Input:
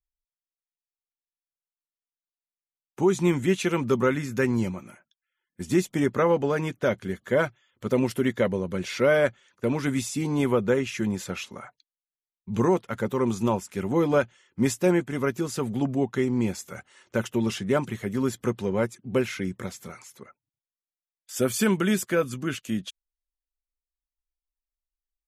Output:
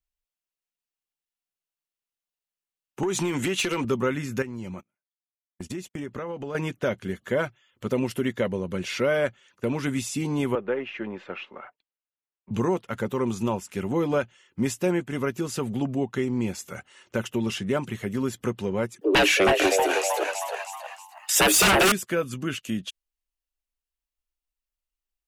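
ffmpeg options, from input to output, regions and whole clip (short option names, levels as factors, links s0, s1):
-filter_complex "[0:a]asettb=1/sr,asplit=3[s0][s1][s2];[s0]atrim=end=3.034[s3];[s1]atrim=start=3.03:end=3.85,asetpts=PTS-STARTPTS,afade=t=in:d=0.004:c=qsin,afade=t=out:st=0.816:d=0.004:c=qsin,highpass=f=370:p=1,acompressor=threshold=0.0316:ratio=12:attack=3.2:release=140:knee=1:detection=peak,aeval=exprs='0.119*sin(PI/2*2.24*val(0)/0.119)':c=same[s4];[s2]atrim=start=3.846[s5];[s3][s4]acrossfade=d=0.004:c1=hsin:c2=qsin[s6];[s6][s5]acrossfade=d=0.004:c1=qsin:c2=hsin,asettb=1/sr,asplit=3[s7][s8][s9];[s7]atrim=end=4.424[s10];[s8]atrim=start=4.42:end=6.55,asetpts=PTS-STARTPTS,afade=t=in:d=0.004:c=qsin,afade=t=out:st=2.126:d=0.004:c=qsin,agate=range=0.0112:threshold=0.01:ratio=16:release=100:detection=peak,highshelf=f=12000:g=-6.5,acompressor=threshold=0.0251:ratio=6:attack=3.2:release=140:knee=1:detection=peak[s11];[s9]atrim=start=6.546[s12];[s10][s11]acrossfade=d=0.004:c1=hsin:c2=qsin[s13];[s13][s12]acrossfade=d=0.004:c1=qsin:c2=hsin,asettb=1/sr,asplit=3[s14][s15][s16];[s14]atrim=end=10.554[s17];[s15]atrim=start=10.55:end=12.51,asetpts=PTS-STARTPTS,afade=t=in:d=0.004:c=qsin,afade=t=out:st=1.956:d=0.004:c=qsin,aeval=exprs='if(lt(val(0),0),0.708*val(0),val(0))':c=same,lowpass=4700,acrossover=split=280 2900:gain=0.126 1 0.0631[s18][s19][s20];[s18][s19][s20]amix=inputs=3:normalize=0[s21];[s16]atrim=start=12.506[s22];[s17][s21]acrossfade=d=0.004:c1=hsin:c2=qsin[s23];[s23][s22]acrossfade=d=0.004:c1=qsin:c2=hsin,asettb=1/sr,asplit=3[s24][s25][s26];[s24]atrim=end=19.014[s27];[s25]atrim=start=19.01:end=21.92,asetpts=PTS-STARTPTS,afade=t=in:d=0.004:c=qsin,afade=t=out:st=2.906:d=0.004:c=qsin,afreqshift=190,asplit=6[s28][s29][s30][s31][s32][s33];[s29]adelay=316,afreqshift=100,volume=0.422[s34];[s30]adelay=632,afreqshift=200,volume=0.168[s35];[s31]adelay=948,afreqshift=300,volume=0.0676[s36];[s32]adelay=1264,afreqshift=400,volume=0.0269[s37];[s33]adelay=1580,afreqshift=500,volume=0.0108[s38];[s28][s34][s35][s36][s37][s38]amix=inputs=6:normalize=0,atrim=end_sample=128331,aeval=exprs='0.299*sin(PI/2*5.01*val(0)/0.299)':c=same[s39];[s26]atrim=start=21.916[s40];[s27][s39]acrossfade=d=0.004:c1=hsin:c2=qsin[s41];[s41][s40]acrossfade=d=0.004:c1=qsin:c2=hsin,equalizer=f=2800:w=5.7:g=5.5,acompressor=threshold=0.0355:ratio=1.5,volume=1.19"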